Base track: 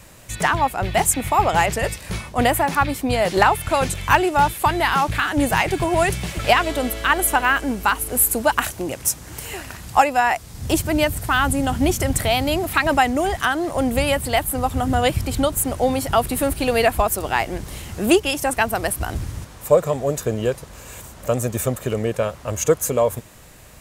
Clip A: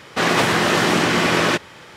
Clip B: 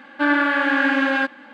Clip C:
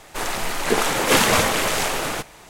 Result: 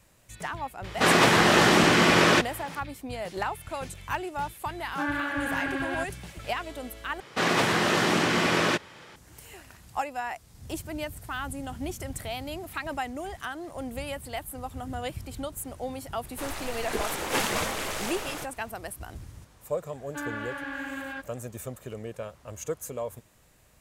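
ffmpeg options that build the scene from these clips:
-filter_complex "[1:a]asplit=2[s0][s1];[2:a]asplit=2[s2][s3];[0:a]volume=0.168,asplit=2[s4][s5];[s4]atrim=end=7.204[s6];[s1]atrim=end=1.96,asetpts=PTS-STARTPTS,volume=0.473[s7];[s5]atrim=start=9.156[s8];[s0]atrim=end=1.96,asetpts=PTS-STARTPTS,volume=0.794,afade=t=in:d=0.004:c=hsin,afade=t=out:st=1.956:d=0.004:c=hsin,adelay=840[s9];[s2]atrim=end=1.53,asetpts=PTS-STARTPTS,volume=0.251,afade=t=in:d=0.004:c=hsin,afade=t=out:st=1.526:d=0.004:c=hsin,adelay=4780[s10];[3:a]atrim=end=2.49,asetpts=PTS-STARTPTS,volume=0.282,afade=t=in:d=0.004:c=hsin,afade=t=out:st=2.486:d=0.004:c=hsin,adelay=16230[s11];[s3]atrim=end=1.53,asetpts=PTS-STARTPTS,volume=0.141,afade=t=in:d=0.004:c=hsin,afade=t=out:st=1.526:d=0.004:c=hsin,adelay=19950[s12];[s6][s7]acrossfade=d=0.004:c1=hsin:c2=hsin[s13];[s13][s8]acrossfade=d=0.004:c1=hsin:c2=hsin[s14];[s14][s9][s10][s11][s12]amix=inputs=5:normalize=0"

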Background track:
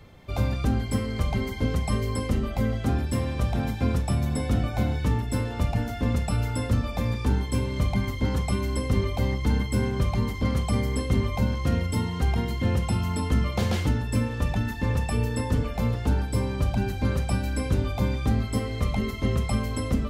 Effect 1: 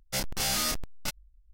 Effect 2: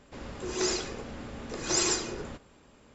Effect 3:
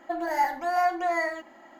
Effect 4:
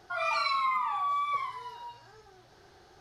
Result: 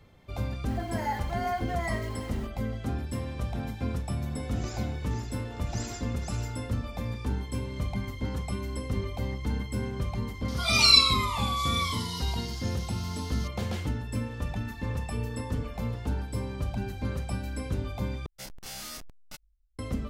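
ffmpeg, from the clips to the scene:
-filter_complex "[4:a]asplit=2[s0][s1];[0:a]volume=0.447[s2];[3:a]aeval=exprs='val(0)+0.5*0.0141*sgn(val(0))':c=same[s3];[2:a]aecho=1:1:493:0.531[s4];[s0]aexciter=amount=13.8:drive=3.8:freq=2800[s5];[s1]acompressor=threshold=0.00794:ratio=6:attack=3.2:release=140:knee=1:detection=peak[s6];[s2]asplit=2[s7][s8];[s7]atrim=end=18.264[s9];[1:a]atrim=end=1.53,asetpts=PTS-STARTPTS,volume=0.251[s10];[s8]atrim=start=19.786[s11];[s3]atrim=end=1.79,asetpts=PTS-STARTPTS,volume=0.398,afade=t=in:d=0.004:c=hsin,afade=t=out:st=1.786:d=0.004:c=hsin,adelay=680[s12];[s4]atrim=end=2.94,asetpts=PTS-STARTPTS,volume=0.178,afade=t=in:d=0.004:c=hsin,afade=t=out:st=2.936:d=0.004:c=hsin,adelay=4030[s13];[s5]atrim=end=3,asetpts=PTS-STARTPTS,volume=0.794,afade=t=in:d=0.004:c=hsin,afade=t=out:st=2.996:d=0.004:c=hsin,adelay=10480[s14];[s6]atrim=end=3,asetpts=PTS-STARTPTS,volume=0.133,afade=t=in:d=0.004:c=hsin,afade=t=out:st=2.996:d=0.004:c=hsin,adelay=14330[s15];[s9][s10]acrossfade=d=0.004:c1=hsin:c2=hsin[s16];[s16][s11]acrossfade=d=0.004:c1=hsin:c2=hsin[s17];[s17][s12][s13][s14][s15]amix=inputs=5:normalize=0"

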